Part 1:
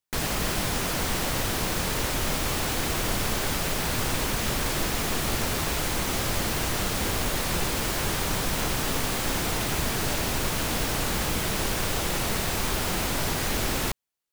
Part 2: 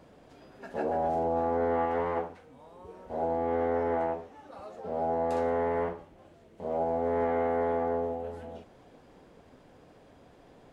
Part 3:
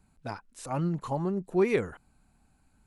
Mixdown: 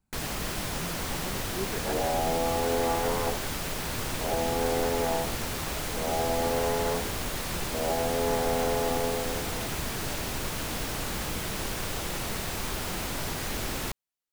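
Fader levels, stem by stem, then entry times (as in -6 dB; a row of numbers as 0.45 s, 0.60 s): -5.5 dB, 0.0 dB, -12.0 dB; 0.00 s, 1.10 s, 0.00 s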